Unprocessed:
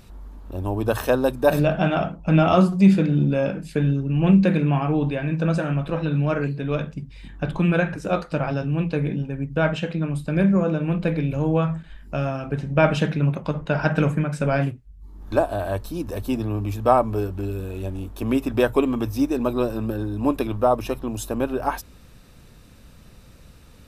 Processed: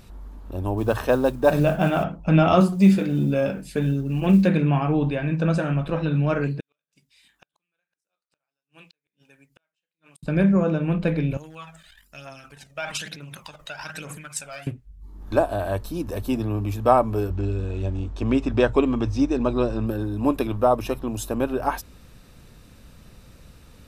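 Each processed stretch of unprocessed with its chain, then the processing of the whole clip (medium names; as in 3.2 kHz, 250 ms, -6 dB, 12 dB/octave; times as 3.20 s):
0.77–2.04 s: treble shelf 5.6 kHz -10 dB + modulation noise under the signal 30 dB
2.60–4.47 s: treble shelf 6.9 kHz +7.5 dB + companded quantiser 8-bit + comb of notches 160 Hz
6.60–10.23 s: differentiator + inverted gate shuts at -37 dBFS, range -42 dB
11.37–14.67 s: transient shaper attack +3 dB, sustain +11 dB + pre-emphasis filter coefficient 0.97 + phaser 1.1 Hz, delay 1.7 ms, feedback 56%
17.30–19.87 s: low-pass 7.2 kHz 24 dB/octave + peaking EQ 64 Hz +14 dB 0.68 oct
whole clip: none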